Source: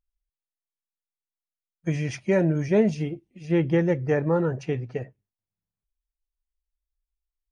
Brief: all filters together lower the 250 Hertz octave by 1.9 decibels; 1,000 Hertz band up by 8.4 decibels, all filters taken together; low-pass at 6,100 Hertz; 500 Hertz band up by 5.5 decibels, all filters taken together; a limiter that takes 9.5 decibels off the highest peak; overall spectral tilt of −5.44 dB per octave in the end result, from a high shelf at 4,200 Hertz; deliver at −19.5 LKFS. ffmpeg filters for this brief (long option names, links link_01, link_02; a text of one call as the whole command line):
ffmpeg -i in.wav -af "lowpass=6100,equalizer=frequency=250:width_type=o:gain=-7,equalizer=frequency=500:width_type=o:gain=6.5,equalizer=frequency=1000:width_type=o:gain=8.5,highshelf=frequency=4200:gain=7.5,volume=7.5dB,alimiter=limit=-8.5dB:level=0:latency=1" out.wav